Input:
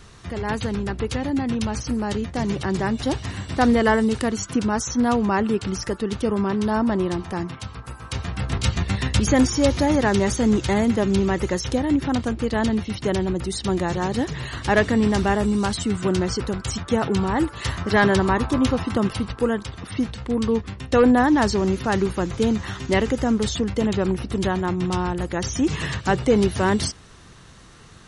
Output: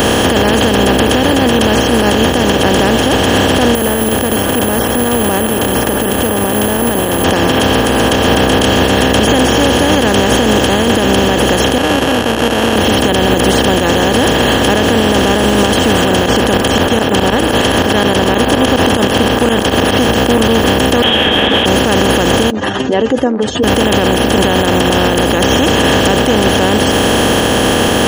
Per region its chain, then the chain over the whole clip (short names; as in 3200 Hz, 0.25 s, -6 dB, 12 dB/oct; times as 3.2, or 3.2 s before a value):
3.75–7.24 LPF 1300 Hz + compressor 3:1, threshold -29 dBFS + careless resampling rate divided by 4×, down filtered, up zero stuff
11.78–12.76 sample sorter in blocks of 32 samples + HPF 1400 Hz 6 dB/oct + tape spacing loss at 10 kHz 40 dB
16.26–19.97 high shelf 9400 Hz -9 dB + tremolo saw up 9.6 Hz, depth 75%
21.02–21.66 inverted band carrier 3500 Hz + ensemble effect
22.5–23.64 spectral contrast raised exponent 3.5 + HPF 460 Hz 24 dB/oct
whole clip: per-bin compression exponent 0.2; bell 410 Hz +3.5 dB 3 oct; limiter -2 dBFS; gain +1 dB